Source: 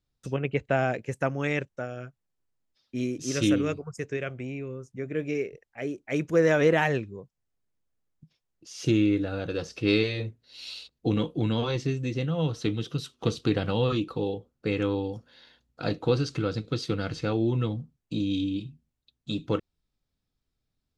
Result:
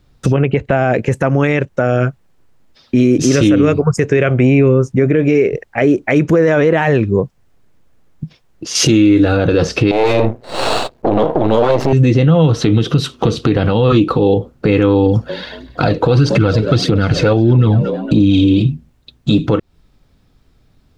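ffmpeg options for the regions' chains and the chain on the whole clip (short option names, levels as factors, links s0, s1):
-filter_complex "[0:a]asettb=1/sr,asplit=3[s0][s1][s2];[s0]atrim=end=8.754[s3];[s1]atrim=start=8.75:end=9.37,asetpts=PTS-STARTPTS,afade=t=in:d=0.004:c=qsin,afade=t=out:st=0.616:d=0.004:c=qsin,highshelf=f=3100:g=9,asplit=2[s4][s5];[s5]adelay=13,volume=0.266[s6];[s4][s6]amix=inputs=2:normalize=0,atrim=end_sample=27342[s7];[s2]atrim=start=9.366[s8];[s3][s7]acrossfade=d=0.004:c1=hsin:c2=qsin[s9];[s9][s8]acrossfade=d=0.004:c1=qsin:c2=hsin,asettb=1/sr,asplit=3[s10][s11][s12];[s10]atrim=end=9.914[s13];[s11]atrim=start=9.91:end=11.93,asetpts=PTS-STARTPTS,afade=t=in:d=0.004:c=qsin,afade=t=out:st=2.016:d=0.004:c=qsin,acompressor=threshold=0.0158:ratio=3:attack=3.2:release=140:knee=1:detection=peak,aeval=exprs='max(val(0),0)':c=same,equalizer=f=680:t=o:w=2:g=15[s14];[s12]atrim=start=11.926[s15];[s13][s14]acrossfade=d=0.004:c1=hsin:c2=qsin[s16];[s16][s15]acrossfade=d=0.004:c1=qsin:c2=hsin,asettb=1/sr,asplit=3[s17][s18][s19];[s17]atrim=end=15.064[s20];[s18]atrim=start=15.06:end=18.62,asetpts=PTS-STARTPTS,afade=t=in:d=0.004:c=qsin,afade=t=out:st=3.556:d=0.004:c=qsin,asplit=4[s21][s22][s23][s24];[s22]adelay=231,afreqshift=74,volume=0.1[s25];[s23]adelay=462,afreqshift=148,volume=0.0462[s26];[s24]adelay=693,afreqshift=222,volume=0.0211[s27];[s21][s25][s26][s27]amix=inputs=4:normalize=0,atrim=end_sample=156996,aphaser=in_gain=1:out_gain=1:delay=2.3:decay=0.44:speed=1.6:type=triangular[s28];[s19]atrim=start=18.616[s29];[s20][s28]acrossfade=d=0.004:c1=hsin:c2=qsin[s30];[s30][s29]acrossfade=d=0.004:c1=qsin:c2=hsin,highshelf=f=3300:g=-11,acompressor=threshold=0.0251:ratio=6,alimiter=level_in=33.5:limit=0.891:release=50:level=0:latency=1,volume=0.794"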